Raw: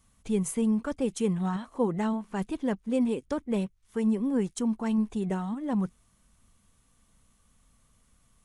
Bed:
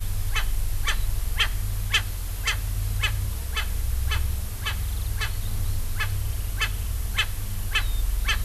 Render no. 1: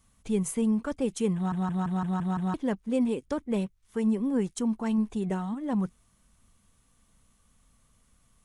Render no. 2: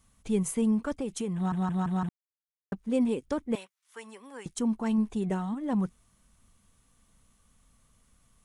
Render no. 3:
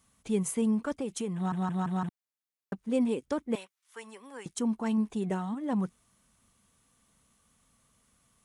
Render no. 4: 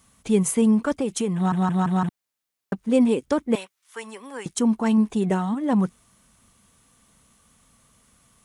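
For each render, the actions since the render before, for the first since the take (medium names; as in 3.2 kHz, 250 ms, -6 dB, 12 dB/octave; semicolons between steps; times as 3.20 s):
1.35 s: stutter in place 0.17 s, 7 plays
0.96–1.41 s: compression, threshold -28 dBFS; 2.09–2.72 s: mute; 3.55–4.46 s: high-pass 1 kHz
high-pass 150 Hz 6 dB/octave
trim +9 dB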